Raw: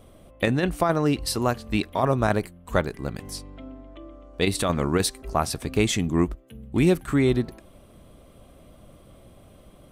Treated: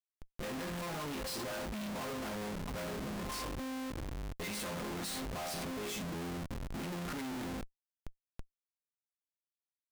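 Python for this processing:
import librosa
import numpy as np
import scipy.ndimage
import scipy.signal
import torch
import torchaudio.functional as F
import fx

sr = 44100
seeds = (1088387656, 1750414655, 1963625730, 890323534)

y = fx.resonator_bank(x, sr, root=53, chord='minor', decay_s=0.41)
y = fx.transient(y, sr, attack_db=-5, sustain_db=1)
y = fx.schmitt(y, sr, flips_db=-57.0)
y = y * librosa.db_to_amplitude(5.5)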